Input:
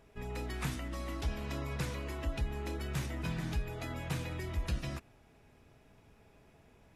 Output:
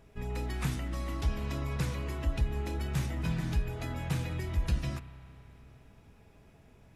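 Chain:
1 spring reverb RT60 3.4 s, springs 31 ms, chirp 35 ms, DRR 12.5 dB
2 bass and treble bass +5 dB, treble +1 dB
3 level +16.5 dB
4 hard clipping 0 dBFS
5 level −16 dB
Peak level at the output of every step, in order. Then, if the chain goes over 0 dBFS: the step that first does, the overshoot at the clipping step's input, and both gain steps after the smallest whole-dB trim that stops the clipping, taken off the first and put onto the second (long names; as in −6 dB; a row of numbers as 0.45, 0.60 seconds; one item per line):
−24.5, −19.5, −3.0, −3.0, −19.0 dBFS
no step passes full scale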